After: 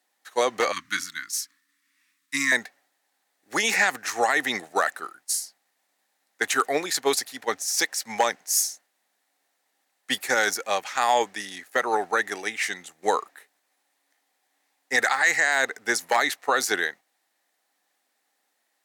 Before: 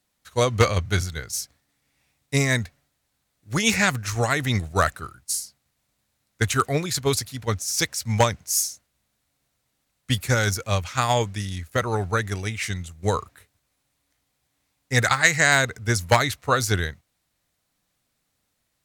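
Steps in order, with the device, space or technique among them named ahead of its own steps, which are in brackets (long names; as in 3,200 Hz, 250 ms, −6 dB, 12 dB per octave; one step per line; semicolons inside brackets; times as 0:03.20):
laptop speaker (high-pass filter 290 Hz 24 dB per octave; parametric band 800 Hz +9 dB 0.33 octaves; parametric band 1,800 Hz +8 dB 0.31 octaves; brickwall limiter −10 dBFS, peak gain reduction 11.5 dB)
0:00.72–0:02.52: elliptic band-stop filter 290–1,100 Hz, stop band 40 dB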